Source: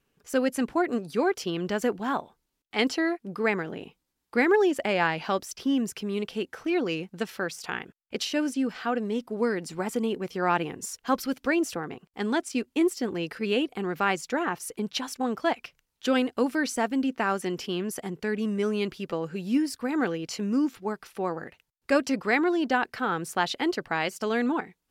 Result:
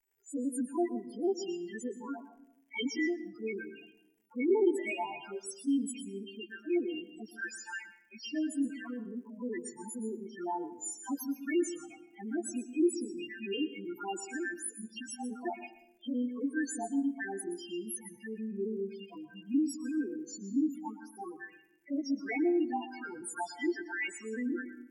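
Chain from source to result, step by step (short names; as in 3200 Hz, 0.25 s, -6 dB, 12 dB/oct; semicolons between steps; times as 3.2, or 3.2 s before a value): frequency quantiser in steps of 2 st; envelope flanger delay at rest 2.3 ms, full sweep at -20 dBFS; loudest bins only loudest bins 4; crackle 120/s -59 dBFS; fixed phaser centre 810 Hz, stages 8; reverb RT60 0.80 s, pre-delay 0.118 s, DRR 12 dB; gain -2 dB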